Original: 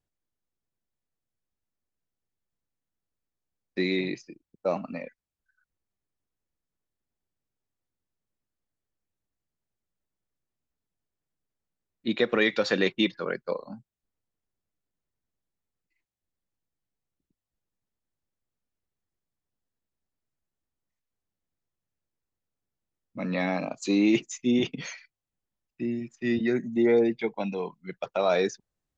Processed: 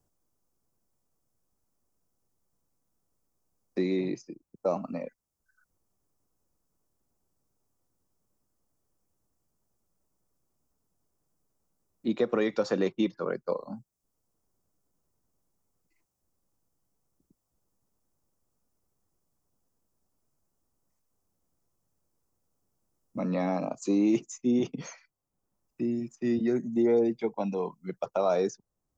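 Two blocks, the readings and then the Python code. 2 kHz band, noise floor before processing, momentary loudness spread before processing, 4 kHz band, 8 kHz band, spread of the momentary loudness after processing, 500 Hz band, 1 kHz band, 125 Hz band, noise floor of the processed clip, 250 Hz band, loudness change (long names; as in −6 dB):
−11.5 dB, below −85 dBFS, 16 LU, −12.0 dB, can't be measured, 13 LU, −1.5 dB, −1.0 dB, −1.0 dB, −82 dBFS, −1.5 dB, −2.0 dB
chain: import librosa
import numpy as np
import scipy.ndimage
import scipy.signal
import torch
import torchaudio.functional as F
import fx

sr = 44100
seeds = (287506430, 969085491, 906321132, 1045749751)

y = fx.band_shelf(x, sr, hz=2600.0, db=-11.5, octaves=1.7)
y = fx.band_squash(y, sr, depth_pct=40)
y = y * librosa.db_to_amplitude(-1.0)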